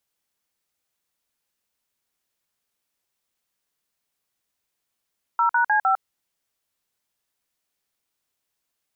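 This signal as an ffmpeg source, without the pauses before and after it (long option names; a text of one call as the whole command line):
ffmpeg -f lavfi -i "aevalsrc='0.112*clip(min(mod(t,0.153),0.103-mod(t,0.153))/0.002,0,1)*(eq(floor(t/0.153),0)*(sin(2*PI*941*mod(t,0.153))+sin(2*PI*1336*mod(t,0.153)))+eq(floor(t/0.153),1)*(sin(2*PI*941*mod(t,0.153))+sin(2*PI*1477*mod(t,0.153)))+eq(floor(t/0.153),2)*(sin(2*PI*852*mod(t,0.153))+sin(2*PI*1633*mod(t,0.153)))+eq(floor(t/0.153),3)*(sin(2*PI*770*mod(t,0.153))+sin(2*PI*1336*mod(t,0.153))))':duration=0.612:sample_rate=44100" out.wav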